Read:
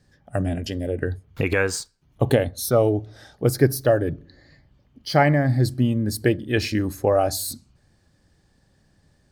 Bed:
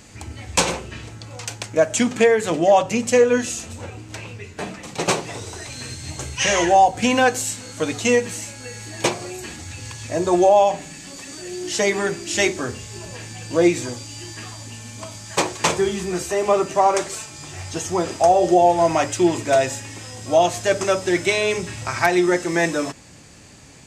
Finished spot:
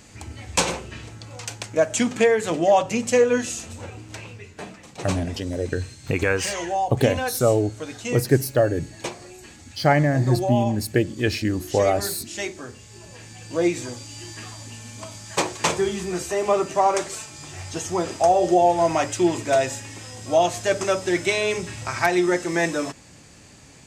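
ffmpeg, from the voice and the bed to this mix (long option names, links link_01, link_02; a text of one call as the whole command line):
ffmpeg -i stem1.wav -i stem2.wav -filter_complex "[0:a]adelay=4700,volume=-0.5dB[link_01];[1:a]volume=5.5dB,afade=type=out:start_time=4.07:duration=0.85:silence=0.398107,afade=type=in:start_time=12.78:duration=1.5:silence=0.398107[link_02];[link_01][link_02]amix=inputs=2:normalize=0" out.wav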